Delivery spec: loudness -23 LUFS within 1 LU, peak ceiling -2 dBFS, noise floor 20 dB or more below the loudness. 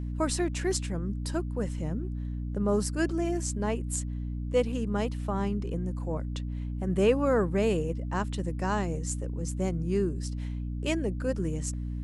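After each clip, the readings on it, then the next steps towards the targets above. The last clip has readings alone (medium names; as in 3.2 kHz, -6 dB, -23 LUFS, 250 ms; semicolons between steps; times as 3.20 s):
hum 60 Hz; highest harmonic 300 Hz; hum level -31 dBFS; loudness -30.5 LUFS; peak level -12.0 dBFS; loudness target -23.0 LUFS
-> hum notches 60/120/180/240/300 Hz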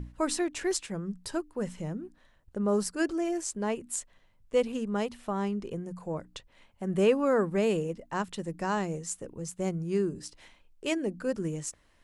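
hum not found; loudness -31.5 LUFS; peak level -12.5 dBFS; loudness target -23.0 LUFS
-> trim +8.5 dB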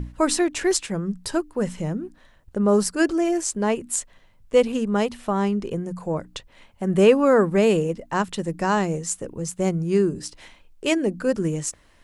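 loudness -23.0 LUFS; peak level -4.0 dBFS; noise floor -55 dBFS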